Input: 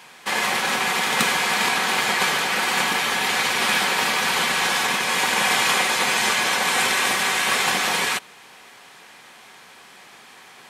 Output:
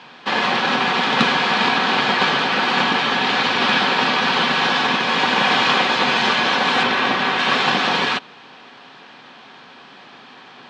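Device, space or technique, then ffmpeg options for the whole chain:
guitar cabinet: -filter_complex "[0:a]asettb=1/sr,asplit=3[link_01][link_02][link_03];[link_01]atrim=end=6.834[link_04];[link_02]atrim=start=6.83:end=7.39,asetpts=PTS-STARTPTS,afade=type=in:duration=0.004:curve=qsin,afade=type=out:start_time=0.556:duration=0.004:curve=qsin,aemphasis=mode=reproduction:type=cd[link_05];[link_03]atrim=start=7.386[link_06];[link_04][link_05]acrossfade=duration=0.004:curve1=hsin:curve2=qsin[link_07];[link_07][link_06]acrossfade=duration=0.004:curve1=qsin:curve2=hsin,highpass=95,equalizer=frequency=140:width_type=q:width=4:gain=4,equalizer=frequency=260:width_type=q:width=4:gain=8,equalizer=frequency=2100:width_type=q:width=4:gain=-7,lowpass=frequency=4300:width=0.5412,lowpass=frequency=4300:width=1.3066,volume=5dB"

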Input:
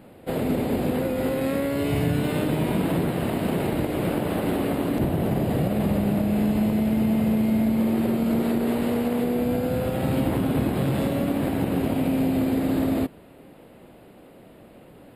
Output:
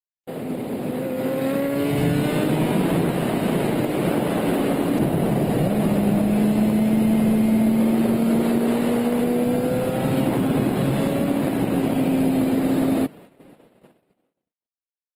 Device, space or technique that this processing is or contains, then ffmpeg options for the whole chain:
video call: -af "highpass=frequency=120:width=0.5412,highpass=frequency=120:width=1.3066,dynaudnorm=framelen=180:gausssize=13:maxgain=8dB,agate=range=-58dB:threshold=-39dB:ratio=16:detection=peak,volume=-4dB" -ar 48000 -c:a libopus -b:a 20k

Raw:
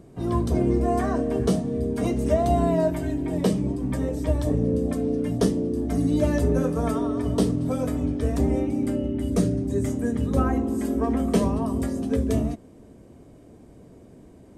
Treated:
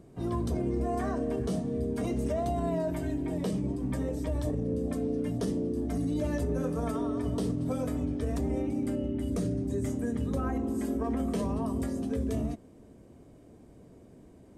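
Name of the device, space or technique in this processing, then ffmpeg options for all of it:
clipper into limiter: -af "asoftclip=type=hard:threshold=-10dB,alimiter=limit=-17.5dB:level=0:latency=1:release=36,volume=-5dB"

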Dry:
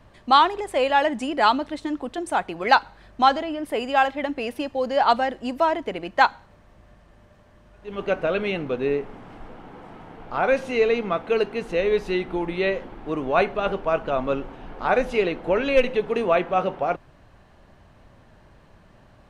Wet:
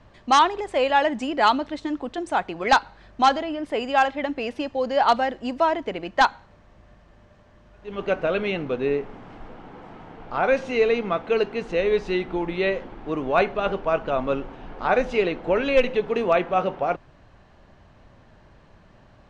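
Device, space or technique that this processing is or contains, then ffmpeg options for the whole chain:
synthesiser wavefolder: -af "aeval=exprs='0.398*(abs(mod(val(0)/0.398+3,4)-2)-1)':channel_layout=same,lowpass=frequency=7300:width=0.5412,lowpass=frequency=7300:width=1.3066"

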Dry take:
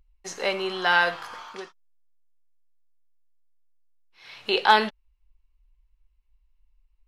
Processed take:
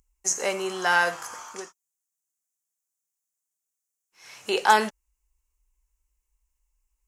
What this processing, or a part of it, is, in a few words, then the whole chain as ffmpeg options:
budget condenser microphone: -af "highpass=frequency=93:poles=1,highshelf=frequency=5200:width_type=q:width=3:gain=10.5"

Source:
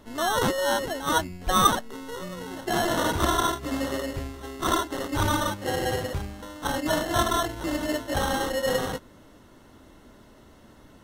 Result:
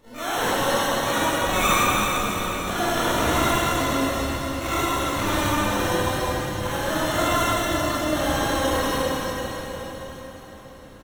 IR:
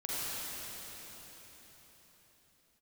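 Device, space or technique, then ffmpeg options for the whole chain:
shimmer-style reverb: -filter_complex "[0:a]asplit=3[link_01][link_02][link_03];[link_01]afade=type=out:start_time=5.36:duration=0.02[link_04];[link_02]aecho=1:1:5.7:0.3,afade=type=in:start_time=5.36:duration=0.02,afade=type=out:start_time=6.89:duration=0.02[link_05];[link_03]afade=type=in:start_time=6.89:duration=0.02[link_06];[link_04][link_05][link_06]amix=inputs=3:normalize=0,asplit=2[link_07][link_08];[link_08]asetrate=88200,aresample=44100,atempo=0.5,volume=-5dB[link_09];[link_07][link_09]amix=inputs=2:normalize=0[link_10];[1:a]atrim=start_sample=2205[link_11];[link_10][link_11]afir=irnorm=-1:irlink=0,volume=-3.5dB"

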